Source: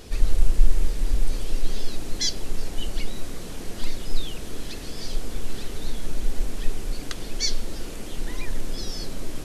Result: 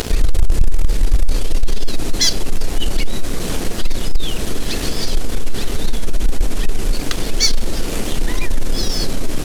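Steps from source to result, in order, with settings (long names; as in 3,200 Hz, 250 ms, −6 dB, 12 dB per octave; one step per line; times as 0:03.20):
leveller curve on the samples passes 3
upward compression, threshold −11 dBFS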